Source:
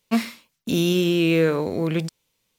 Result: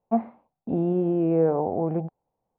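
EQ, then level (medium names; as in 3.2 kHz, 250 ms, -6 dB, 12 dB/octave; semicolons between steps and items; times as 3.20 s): resonant low-pass 770 Hz, resonance Q 7.9; distance through air 470 m; -4.0 dB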